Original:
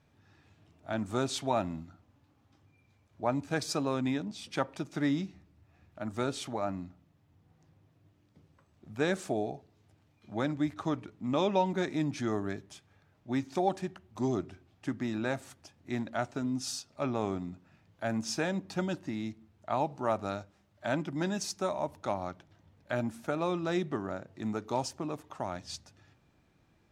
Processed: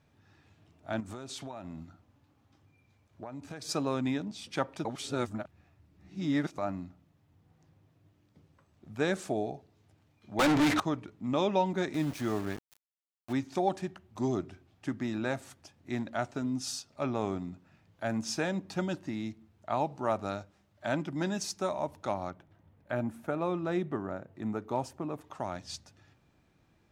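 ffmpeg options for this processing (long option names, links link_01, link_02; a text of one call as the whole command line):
ffmpeg -i in.wav -filter_complex "[0:a]asettb=1/sr,asplit=3[link_01][link_02][link_03];[link_01]atrim=end=1.004[link_04];[link_02]atrim=start=1:end=3.69,asetpts=PTS-STARTPTS,afade=type=in:duration=0.004:curve=qsin,afade=type=out:start_time=2.686:duration=0.004:curve=qsin,acompressor=threshold=-37dB:ratio=16:attack=3.2:release=140:knee=1:detection=peak[link_05];[link_03]atrim=start=3.686[link_06];[link_04][link_05]acrossfade=duration=0.004:curve1=hsin:curve2=qsin[link_07];[link_07][link_06]acrossfade=duration=0.004:curve1=qsin:curve2=hsin,asettb=1/sr,asplit=3[link_08][link_09][link_10];[link_08]atrim=end=10.394[link_11];[link_09]atrim=start=10.39:end=10.8,asetpts=PTS-STARTPTS,afade=type=in:duration=0.004:curve=qsin,afade=type=out:start_time=0.406:duration=0.004:curve=qsin,asplit=2[link_12][link_13];[link_13]highpass=frequency=720:poles=1,volume=39dB,asoftclip=type=tanh:threshold=-18dB[link_14];[link_12][link_14]amix=inputs=2:normalize=0,lowpass=frequency=6100:poles=1,volume=-6dB[link_15];[link_10]atrim=start=10.796[link_16];[link_11][link_15]acrossfade=duration=0.004:curve1=hsin:curve2=qsin[link_17];[link_17][link_16]acrossfade=duration=0.004:curve1=qsin:curve2=hsin,asettb=1/sr,asplit=3[link_18][link_19][link_20];[link_18]atrim=end=11.944[link_21];[link_19]atrim=start=11.94:end=13.33,asetpts=PTS-STARTPTS,afade=type=in:duration=0.004:curve=qsin,afade=type=out:start_time=1.386:duration=0.004:curve=qsin,aeval=exprs='val(0)*gte(abs(val(0)),0.01)':channel_layout=same[link_22];[link_20]atrim=start=13.326[link_23];[link_21][link_22]acrossfade=duration=0.004:curve1=hsin:curve2=qsin[link_24];[link_24][link_23]acrossfade=duration=0.004:curve1=qsin:curve2=hsin,asettb=1/sr,asplit=3[link_25][link_26][link_27];[link_25]atrim=end=22.304[link_28];[link_26]atrim=start=22.3:end=25.21,asetpts=PTS-STARTPTS,afade=type=in:duration=0.004:curve=qsin,afade=type=out:start_time=2.906:duration=0.004:curve=qsin,equalizer=frequency=5400:width_type=o:width=1.7:gain=-11[link_29];[link_27]atrim=start=25.206[link_30];[link_28][link_29]acrossfade=duration=0.004:curve1=hsin:curve2=qsin[link_31];[link_31][link_30]acrossfade=duration=0.004:curve1=qsin:curve2=hsin,asplit=3[link_32][link_33][link_34];[link_32]atrim=end=4.852[link_35];[link_33]atrim=start=4.848:end=6.582,asetpts=PTS-STARTPTS,areverse[link_36];[link_34]atrim=start=6.578[link_37];[link_35][link_36]acrossfade=duration=0.004:curve1=hsin:curve2=hsin[link_38];[link_38][link_37]acrossfade=duration=0.004:curve1=hsin:curve2=hsin" out.wav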